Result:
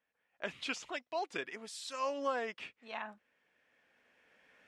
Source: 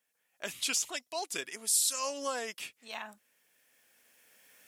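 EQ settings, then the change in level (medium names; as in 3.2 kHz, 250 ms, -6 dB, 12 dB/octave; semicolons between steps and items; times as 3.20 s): low-pass 2.3 kHz 12 dB/octave; +1.0 dB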